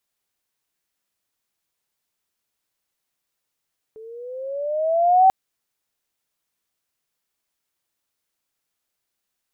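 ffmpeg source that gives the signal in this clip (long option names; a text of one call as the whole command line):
ffmpeg -f lavfi -i "aevalsrc='pow(10,(-9+28.5*(t/1.34-1))/20)*sin(2*PI*434*1.34/(10*log(2)/12)*(exp(10*log(2)/12*t/1.34)-1))':duration=1.34:sample_rate=44100" out.wav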